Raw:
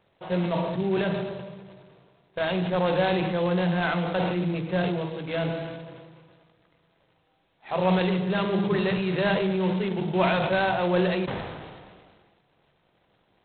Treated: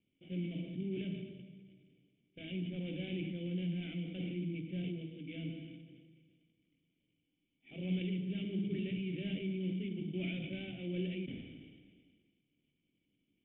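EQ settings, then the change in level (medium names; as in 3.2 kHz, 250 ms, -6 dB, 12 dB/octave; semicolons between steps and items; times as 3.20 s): cascade formant filter i; treble shelf 2.6 kHz +8.5 dB; static phaser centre 2.4 kHz, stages 4; -2.0 dB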